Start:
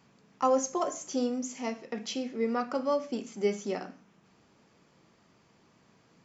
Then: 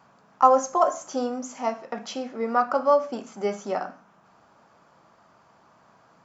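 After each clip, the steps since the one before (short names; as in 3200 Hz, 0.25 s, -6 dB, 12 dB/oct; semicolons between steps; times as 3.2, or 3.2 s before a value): band shelf 950 Hz +11.5 dB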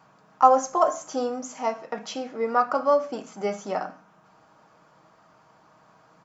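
comb 6.4 ms, depth 36%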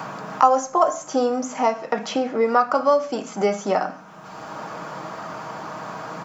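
three-band squash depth 70%; gain +6 dB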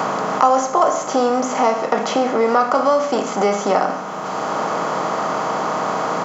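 per-bin compression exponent 0.6; in parallel at -2.5 dB: limiter -11 dBFS, peak gain reduction 11 dB; on the sum: gain -3 dB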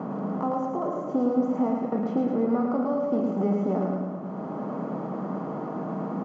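band-pass 210 Hz, Q 2; feedback echo 0.109 s, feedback 57%, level -3.5 dB; mismatched tape noise reduction decoder only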